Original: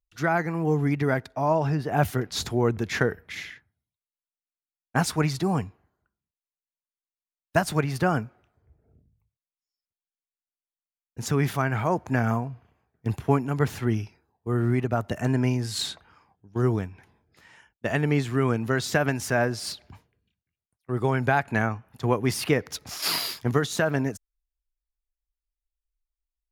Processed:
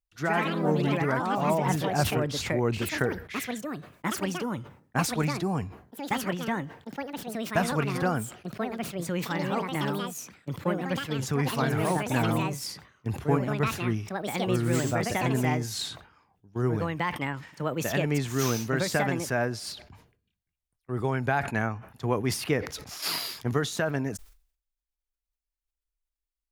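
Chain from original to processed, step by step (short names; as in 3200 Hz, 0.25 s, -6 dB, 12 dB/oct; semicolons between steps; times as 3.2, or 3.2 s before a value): echoes that change speed 0.112 s, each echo +4 st, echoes 3; sustainer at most 110 dB/s; gain -4 dB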